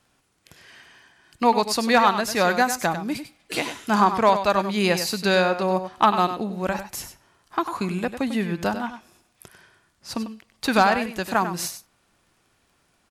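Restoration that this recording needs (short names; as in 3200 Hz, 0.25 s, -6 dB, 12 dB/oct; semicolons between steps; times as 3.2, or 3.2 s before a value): clip repair -7 dBFS; de-click; inverse comb 97 ms -10 dB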